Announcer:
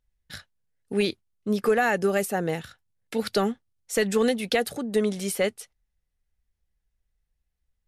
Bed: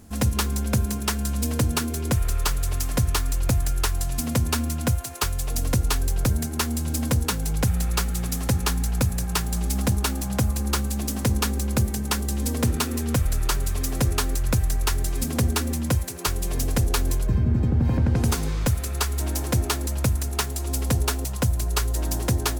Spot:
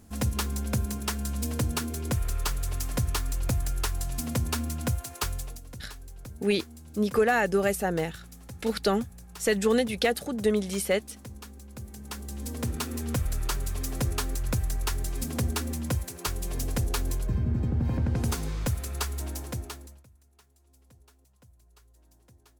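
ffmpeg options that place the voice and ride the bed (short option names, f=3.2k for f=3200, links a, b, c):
-filter_complex "[0:a]adelay=5500,volume=-1dB[a];[1:a]volume=9.5dB,afade=t=out:st=5.33:d=0.27:silence=0.16788,afade=t=in:st=11.74:d=1.34:silence=0.177828,afade=t=out:st=19.04:d=1:silence=0.0334965[b];[a][b]amix=inputs=2:normalize=0"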